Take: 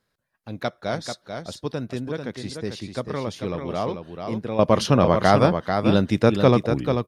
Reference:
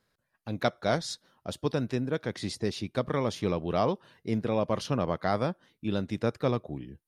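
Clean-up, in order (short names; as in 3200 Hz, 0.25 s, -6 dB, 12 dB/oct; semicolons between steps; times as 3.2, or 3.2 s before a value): inverse comb 0.441 s -6.5 dB; gain correction -11 dB, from 4.59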